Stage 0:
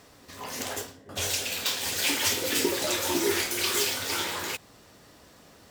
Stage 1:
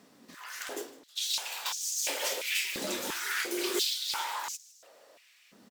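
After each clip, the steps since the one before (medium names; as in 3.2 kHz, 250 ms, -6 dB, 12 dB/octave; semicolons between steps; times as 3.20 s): frequency-shifting echo 157 ms, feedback 56%, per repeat +100 Hz, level -20 dB; step-sequenced high-pass 2.9 Hz 210–6200 Hz; trim -7.5 dB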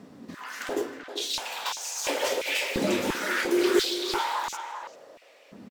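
tilt EQ -3 dB/octave; speakerphone echo 390 ms, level -8 dB; trim +7 dB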